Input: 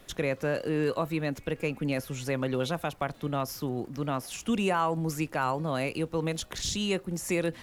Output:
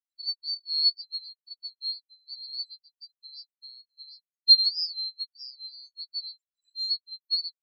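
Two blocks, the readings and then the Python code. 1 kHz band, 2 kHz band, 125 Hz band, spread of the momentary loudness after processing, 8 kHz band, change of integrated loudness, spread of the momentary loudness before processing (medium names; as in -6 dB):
under -40 dB, under -40 dB, under -40 dB, 24 LU, under -30 dB, +5.0 dB, 5 LU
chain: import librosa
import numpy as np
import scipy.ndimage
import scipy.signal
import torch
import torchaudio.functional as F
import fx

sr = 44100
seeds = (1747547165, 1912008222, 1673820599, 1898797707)

y = fx.band_swap(x, sr, width_hz=4000)
y = fx.spec_gate(y, sr, threshold_db=-15, keep='strong')
y = fx.high_shelf(y, sr, hz=4700.0, db=9.0)
y = fx.spectral_expand(y, sr, expansion=4.0)
y = F.gain(torch.from_numpy(y), 4.0).numpy()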